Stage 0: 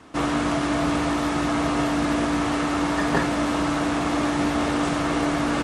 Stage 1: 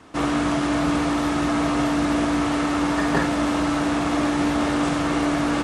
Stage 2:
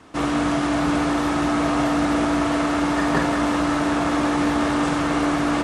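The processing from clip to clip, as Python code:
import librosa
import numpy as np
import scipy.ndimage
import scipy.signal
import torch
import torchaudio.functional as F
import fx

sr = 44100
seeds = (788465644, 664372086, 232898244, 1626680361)

y1 = fx.doubler(x, sr, ms=48.0, db=-10.0)
y2 = fx.echo_wet_bandpass(y1, sr, ms=183, feedback_pct=83, hz=910.0, wet_db=-7)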